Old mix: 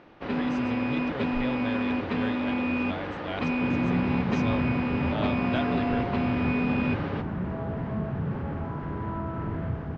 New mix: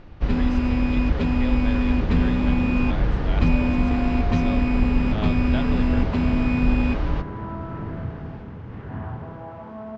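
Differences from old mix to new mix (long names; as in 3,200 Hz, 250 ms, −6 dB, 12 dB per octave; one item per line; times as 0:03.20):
first sound: remove band-pass filter 290–3,500 Hz
second sound: entry −1.65 s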